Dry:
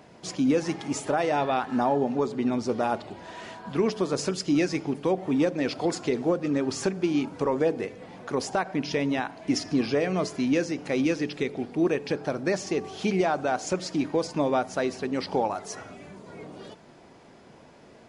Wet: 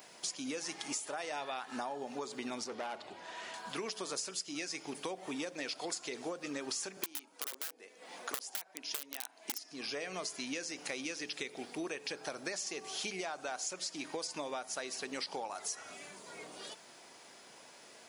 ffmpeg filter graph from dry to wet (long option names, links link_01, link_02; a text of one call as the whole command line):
ffmpeg -i in.wav -filter_complex "[0:a]asettb=1/sr,asplit=3[link_01][link_02][link_03];[link_01]atrim=end=2.644[link_04];[link_02]atrim=start=2.64:end=3.54,asetpts=PTS-STARTPTS,afade=type=in:duration=0.004:curve=qsin,afade=type=out:start_time=0.896:duration=0.004:curve=qsin,lowpass=frequency=2200:poles=1,aeval=exprs='(tanh(15.8*val(0)+0.3)-tanh(0.3))/15.8':channel_layout=same[link_05];[link_03]atrim=start=3.536[link_06];[link_04][link_05]acrossfade=duration=0.004:curve1=hsin:curve2=qsin[link_07];[link_07][link_06]acrossfade=duration=0.004:curve1=qsin:curve2=hsin,asettb=1/sr,asplit=3[link_08][link_09][link_10];[link_08]atrim=end=6.974[link_11];[link_09]atrim=start=6.97:end=9.71,asetpts=PTS-STARTPTS,afade=type=in:duration=0.004:curve=qsin,afade=type=out:start_time=2.736:duration=0.004:curve=qsin,highpass=frequency=200:width=0.5412,highpass=frequency=200:width=1.3066,equalizer=frequency=650:width=0.84:gain=2,aeval=exprs='(mod(7.5*val(0)+1,2)-1)/7.5':channel_layout=same[link_12];[link_10]atrim=start=9.706[link_13];[link_11][link_12]acrossfade=duration=0.004:curve1=hsin:curve2=qsin[link_14];[link_14][link_13]acrossfade=duration=0.004:curve1=qsin:curve2=hsin,highpass=frequency=1000:poles=1,aemphasis=mode=production:type=75kf,acompressor=threshold=-35dB:ratio=10,volume=-1dB" out.wav